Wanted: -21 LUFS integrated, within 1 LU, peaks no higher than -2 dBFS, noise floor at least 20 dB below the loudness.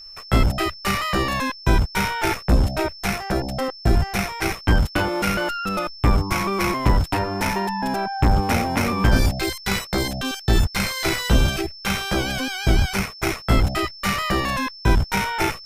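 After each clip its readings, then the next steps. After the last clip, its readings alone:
steady tone 5300 Hz; tone level -38 dBFS; loudness -22.0 LUFS; peak -5.5 dBFS; loudness target -21.0 LUFS
-> notch 5300 Hz, Q 30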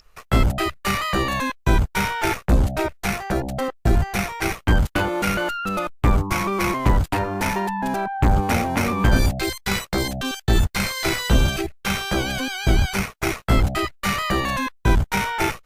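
steady tone none; loudness -22.5 LUFS; peak -5.5 dBFS; loudness target -21.0 LUFS
-> gain +1.5 dB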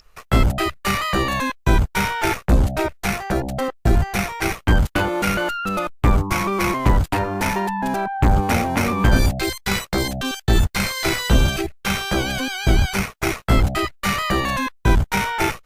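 loudness -21.0 LUFS; peak -4.0 dBFS; noise floor -54 dBFS

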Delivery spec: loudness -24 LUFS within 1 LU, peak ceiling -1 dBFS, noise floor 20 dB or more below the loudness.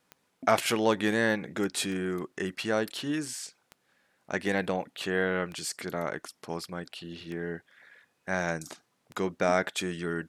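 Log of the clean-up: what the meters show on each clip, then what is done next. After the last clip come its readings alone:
clicks 6; loudness -30.5 LUFS; peak -8.5 dBFS; loudness target -24.0 LUFS
-> de-click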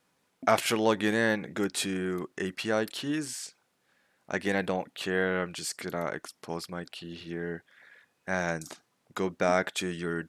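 clicks 0; loudness -30.5 LUFS; peak -8.5 dBFS; loudness target -24.0 LUFS
-> gain +6.5 dB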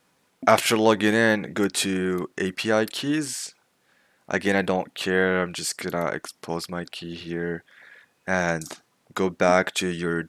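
loudness -24.0 LUFS; peak -2.0 dBFS; noise floor -68 dBFS

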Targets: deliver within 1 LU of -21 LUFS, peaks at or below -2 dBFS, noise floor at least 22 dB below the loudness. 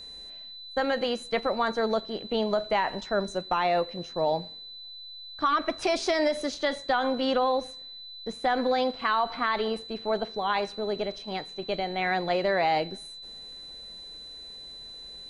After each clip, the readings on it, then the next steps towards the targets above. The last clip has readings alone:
steady tone 4000 Hz; tone level -41 dBFS; loudness -28.0 LUFS; peak -13.0 dBFS; loudness target -21.0 LUFS
-> notch 4000 Hz, Q 30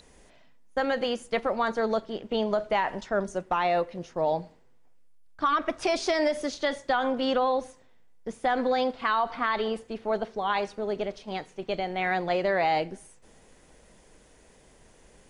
steady tone none; loudness -28.0 LUFS; peak -13.5 dBFS; loudness target -21.0 LUFS
-> gain +7 dB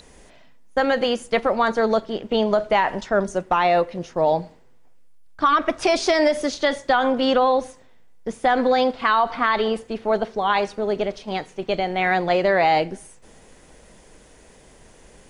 loudness -21.0 LUFS; peak -6.5 dBFS; noise floor -50 dBFS

